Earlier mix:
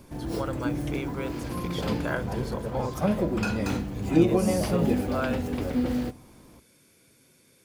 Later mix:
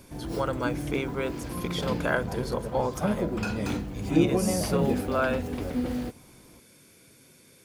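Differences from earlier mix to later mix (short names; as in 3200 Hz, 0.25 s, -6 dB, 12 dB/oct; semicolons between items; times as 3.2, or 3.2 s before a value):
speech +6.0 dB; reverb: off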